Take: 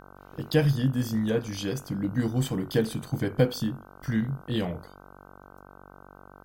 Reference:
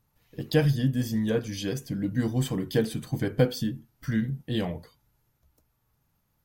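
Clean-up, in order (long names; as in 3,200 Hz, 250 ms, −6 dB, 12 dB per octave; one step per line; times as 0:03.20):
hum removal 47.8 Hz, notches 32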